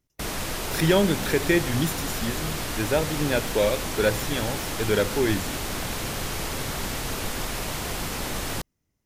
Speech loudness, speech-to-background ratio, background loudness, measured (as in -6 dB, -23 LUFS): -26.0 LUFS, 3.5 dB, -29.5 LUFS